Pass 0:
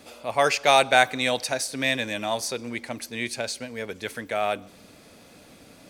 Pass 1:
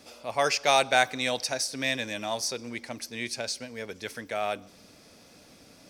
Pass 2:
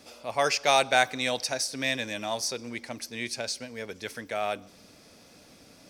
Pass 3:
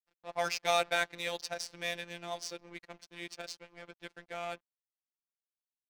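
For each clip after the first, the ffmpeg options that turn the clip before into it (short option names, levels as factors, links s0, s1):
-af "equalizer=f=5400:t=o:w=0.42:g=9,volume=0.596"
-af anull
-af "aeval=exprs='sgn(val(0))*max(abs(val(0))-0.00944,0)':c=same,adynamicsmooth=sensitivity=6.5:basefreq=2900,afftfilt=real='hypot(re,im)*cos(PI*b)':imag='0':win_size=1024:overlap=0.75,volume=0.708"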